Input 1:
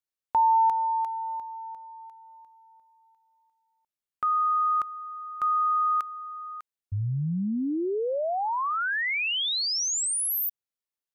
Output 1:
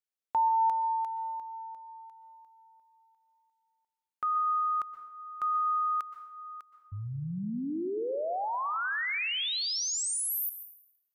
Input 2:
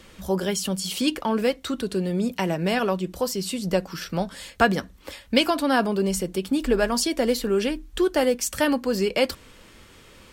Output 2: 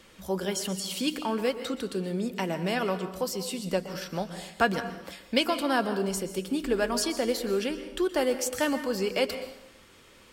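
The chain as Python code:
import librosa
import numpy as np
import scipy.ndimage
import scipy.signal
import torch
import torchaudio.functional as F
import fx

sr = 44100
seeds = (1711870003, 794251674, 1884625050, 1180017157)

y = fx.low_shelf(x, sr, hz=140.0, db=-7.5)
y = fx.rev_plate(y, sr, seeds[0], rt60_s=0.89, hf_ratio=0.8, predelay_ms=110, drr_db=10.0)
y = F.gain(torch.from_numpy(y), -4.5).numpy()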